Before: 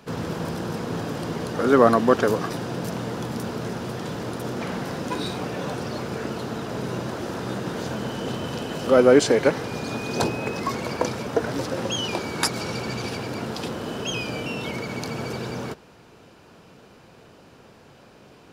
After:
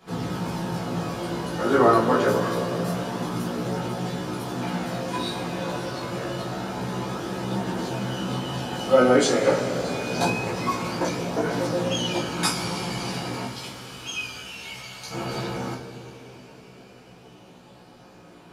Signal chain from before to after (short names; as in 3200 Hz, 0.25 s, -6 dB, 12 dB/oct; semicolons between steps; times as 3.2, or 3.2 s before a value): 13.45–15.11 passive tone stack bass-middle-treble 10-0-10; two-slope reverb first 0.26 s, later 4.9 s, from -20 dB, DRR -6.5 dB; downsampling 32000 Hz; chorus voices 2, 0.13 Hz, delay 16 ms, depth 1.1 ms; gain -4 dB